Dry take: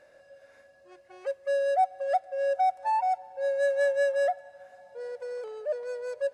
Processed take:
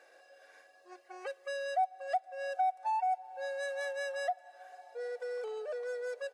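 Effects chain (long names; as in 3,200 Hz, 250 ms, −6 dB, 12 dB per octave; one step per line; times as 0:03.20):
high-pass filter 460 Hz 12 dB per octave
comb filter 2.6 ms, depth 79%
downward compressor 2 to 1, threshold −36 dBFS, peak gain reduction 11.5 dB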